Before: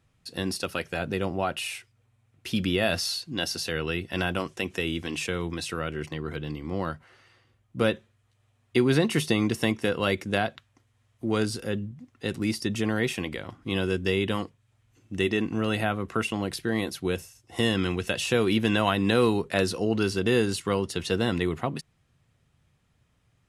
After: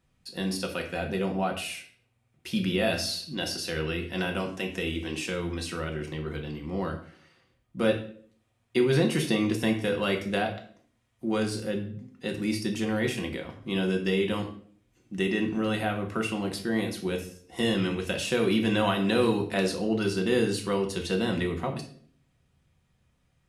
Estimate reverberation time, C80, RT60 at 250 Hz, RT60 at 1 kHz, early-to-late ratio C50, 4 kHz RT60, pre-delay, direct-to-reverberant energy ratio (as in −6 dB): 0.55 s, 13.0 dB, 0.70 s, 0.45 s, 9.0 dB, 0.45 s, 3 ms, 2.0 dB